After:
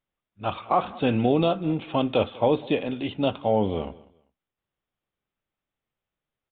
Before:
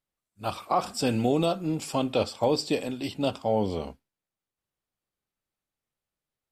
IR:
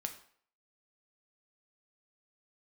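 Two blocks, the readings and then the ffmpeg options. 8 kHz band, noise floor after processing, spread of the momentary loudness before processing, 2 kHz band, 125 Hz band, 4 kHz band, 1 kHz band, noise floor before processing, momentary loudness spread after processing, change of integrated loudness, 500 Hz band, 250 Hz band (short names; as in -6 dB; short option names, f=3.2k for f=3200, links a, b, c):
under -40 dB, under -85 dBFS, 10 LU, +3.0 dB, +3.0 dB, -0.5 dB, +3.0 dB, under -85 dBFS, 11 LU, +3.0 dB, +3.0 dB, +3.0 dB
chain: -af "aecho=1:1:196|392:0.0841|0.0202,aresample=8000,aresample=44100,volume=3dB"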